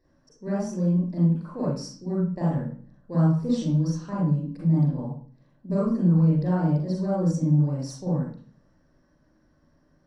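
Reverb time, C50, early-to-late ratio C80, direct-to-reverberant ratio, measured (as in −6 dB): 0.45 s, −1.5 dB, 5.0 dB, −7.0 dB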